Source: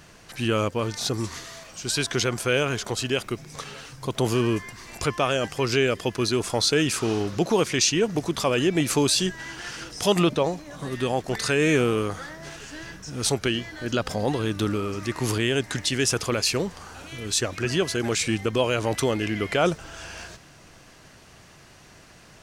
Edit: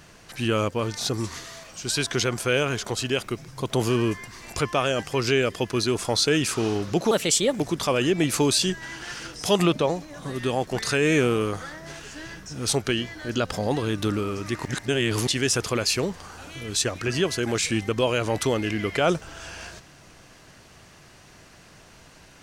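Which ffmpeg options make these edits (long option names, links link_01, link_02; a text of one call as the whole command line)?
ffmpeg -i in.wav -filter_complex "[0:a]asplit=6[link_01][link_02][link_03][link_04][link_05][link_06];[link_01]atrim=end=3.482[link_07];[link_02]atrim=start=3.928:end=7.564[link_08];[link_03]atrim=start=7.56:end=8.17,asetpts=PTS-STARTPTS,asetrate=54684,aresample=44100,atrim=end_sample=21694,asetpts=PTS-STARTPTS[link_09];[link_04]atrim=start=8.166:end=15.222[link_10];[link_05]atrim=start=15.218:end=15.842,asetpts=PTS-STARTPTS,areverse[link_11];[link_06]atrim=start=15.838[link_12];[link_07][link_08]acrossfade=duration=0.004:curve1=hsin:curve2=hsin[link_13];[link_13][link_09]acrossfade=duration=0.004:curve1=hsin:curve2=hsin[link_14];[link_14][link_10]acrossfade=duration=0.004:curve1=hsin:curve2=hsin[link_15];[link_15][link_11]acrossfade=duration=0.004:curve1=hsin:curve2=hsin[link_16];[link_16][link_12]acrossfade=duration=0.004:curve1=hsin:curve2=hsin" out.wav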